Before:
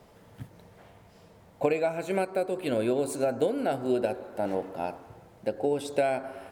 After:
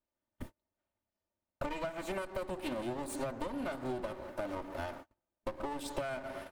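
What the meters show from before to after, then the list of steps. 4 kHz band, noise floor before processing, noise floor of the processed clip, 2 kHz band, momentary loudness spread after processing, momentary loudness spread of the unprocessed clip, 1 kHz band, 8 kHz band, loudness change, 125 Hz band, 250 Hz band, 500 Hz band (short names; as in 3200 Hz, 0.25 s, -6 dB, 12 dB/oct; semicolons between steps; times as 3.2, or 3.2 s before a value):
-4.5 dB, -56 dBFS, under -85 dBFS, -5.5 dB, 7 LU, 10 LU, -7.5 dB, -6.0 dB, -10.0 dB, -7.5 dB, -8.5 dB, -12.0 dB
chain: minimum comb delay 3.3 ms; gate -45 dBFS, range -37 dB; compressor 6:1, threshold -37 dBFS, peak gain reduction 14 dB; gain +2 dB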